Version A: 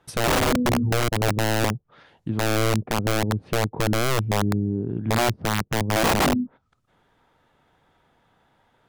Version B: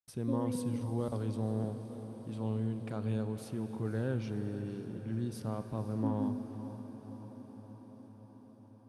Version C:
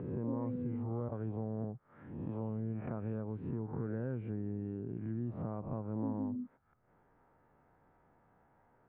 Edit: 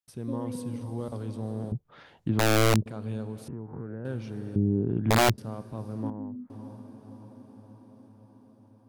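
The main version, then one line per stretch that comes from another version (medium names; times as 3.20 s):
B
1.72–2.86 s: from A
3.48–4.05 s: from C
4.56–5.38 s: from A
6.10–6.50 s: from C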